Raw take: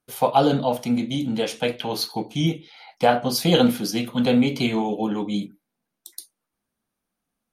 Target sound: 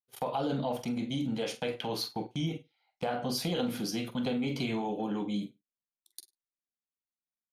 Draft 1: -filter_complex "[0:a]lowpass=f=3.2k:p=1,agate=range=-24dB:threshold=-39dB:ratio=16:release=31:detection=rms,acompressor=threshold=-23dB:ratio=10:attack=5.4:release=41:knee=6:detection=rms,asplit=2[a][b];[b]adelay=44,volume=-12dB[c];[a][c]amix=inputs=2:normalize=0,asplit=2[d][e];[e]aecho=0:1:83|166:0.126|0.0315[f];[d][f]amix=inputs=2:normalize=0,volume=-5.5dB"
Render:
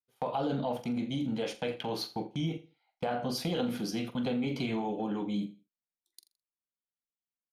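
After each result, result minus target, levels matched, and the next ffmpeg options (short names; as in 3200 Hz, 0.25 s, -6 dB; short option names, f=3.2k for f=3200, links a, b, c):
echo 31 ms late; 8000 Hz band -4.0 dB
-filter_complex "[0:a]lowpass=f=3.2k:p=1,agate=range=-24dB:threshold=-39dB:ratio=16:release=31:detection=rms,acompressor=threshold=-23dB:ratio=10:attack=5.4:release=41:knee=6:detection=rms,asplit=2[a][b];[b]adelay=44,volume=-12dB[c];[a][c]amix=inputs=2:normalize=0,asplit=2[d][e];[e]aecho=0:1:52|104:0.126|0.0315[f];[d][f]amix=inputs=2:normalize=0,volume=-5.5dB"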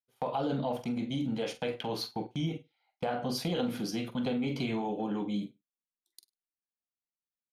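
8000 Hz band -4.0 dB
-filter_complex "[0:a]lowpass=f=7.1k:p=1,agate=range=-24dB:threshold=-39dB:ratio=16:release=31:detection=rms,acompressor=threshold=-23dB:ratio=10:attack=5.4:release=41:knee=6:detection=rms,asplit=2[a][b];[b]adelay=44,volume=-12dB[c];[a][c]amix=inputs=2:normalize=0,asplit=2[d][e];[e]aecho=0:1:52|104:0.126|0.0315[f];[d][f]amix=inputs=2:normalize=0,volume=-5.5dB"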